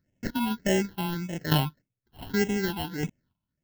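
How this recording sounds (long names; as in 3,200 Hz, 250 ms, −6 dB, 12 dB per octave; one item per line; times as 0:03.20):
aliases and images of a low sample rate 1,200 Hz, jitter 0%
chopped level 0.66 Hz, depth 65%, duty 20%
phaser sweep stages 6, 1.7 Hz, lowest notch 470–1,200 Hz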